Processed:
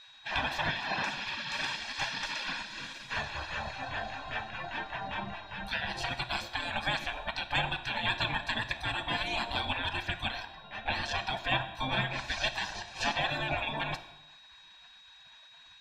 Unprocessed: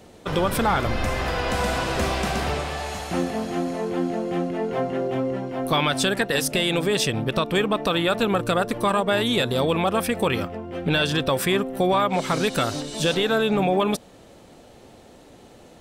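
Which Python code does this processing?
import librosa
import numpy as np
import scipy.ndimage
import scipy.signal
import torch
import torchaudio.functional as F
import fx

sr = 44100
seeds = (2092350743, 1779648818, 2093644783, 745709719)

y = fx.dereverb_blind(x, sr, rt60_s=0.59)
y = fx.spec_gate(y, sr, threshold_db=-20, keep='weak')
y = y + 0.66 * np.pad(y, (int(1.2 * sr / 1000.0), 0))[:len(y)]
y = y + 10.0 ** (-51.0 / 20.0) * np.sin(2.0 * np.pi * 3800.0 * np.arange(len(y)) / sr)
y = fx.air_absorb(y, sr, metres=210.0)
y = fx.rev_plate(y, sr, seeds[0], rt60_s=1.0, hf_ratio=0.9, predelay_ms=0, drr_db=9.5)
y = F.gain(torch.from_numpy(y), 5.5).numpy()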